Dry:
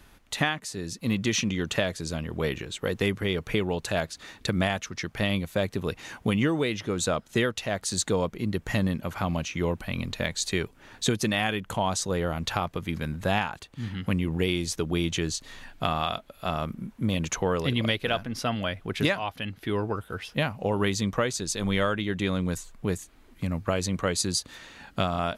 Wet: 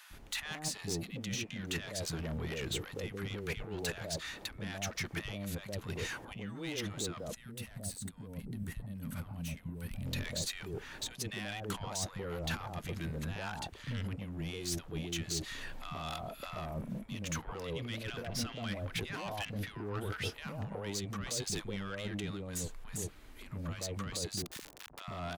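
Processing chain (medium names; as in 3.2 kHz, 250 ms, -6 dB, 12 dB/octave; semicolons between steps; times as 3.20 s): 24.37–25.00 s: companded quantiser 2-bit; compressor with a negative ratio -33 dBFS, ratio -1; saturation -30.5 dBFS, distortion -10 dB; three bands offset in time highs, lows, mids 100/130 ms, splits 220/910 Hz; 7.36–10.06 s: time-frequency box 290–7700 Hz -11 dB; trim -1.5 dB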